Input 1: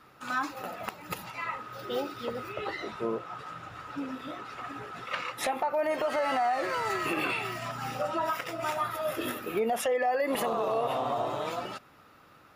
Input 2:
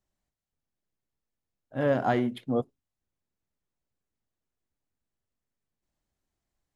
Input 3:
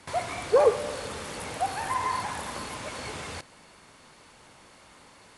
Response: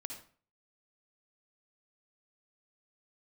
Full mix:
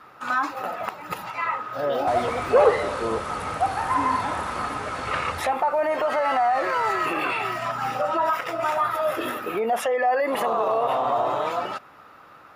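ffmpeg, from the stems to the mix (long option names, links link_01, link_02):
-filter_complex "[0:a]volume=0.5dB[link_01];[1:a]equalizer=frequency=670:width_type=o:width=0.77:gain=10.5,volume=-12dB[link_02];[2:a]lowshelf=frequency=220:gain=11,acontrast=88,adelay=2000,volume=-15dB,asplit=2[link_03][link_04];[link_04]volume=-3dB[link_05];[link_01][link_02]amix=inputs=2:normalize=0,alimiter=limit=-23.5dB:level=0:latency=1:release=22,volume=0dB[link_06];[3:a]atrim=start_sample=2205[link_07];[link_05][link_07]afir=irnorm=-1:irlink=0[link_08];[link_03][link_06][link_08]amix=inputs=3:normalize=0,equalizer=frequency=1000:width_type=o:width=2.6:gain=10"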